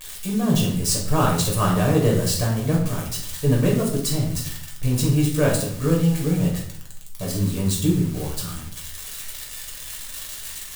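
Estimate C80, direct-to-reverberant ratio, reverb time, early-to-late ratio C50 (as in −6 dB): 8.5 dB, −3.5 dB, 0.60 s, 4.5 dB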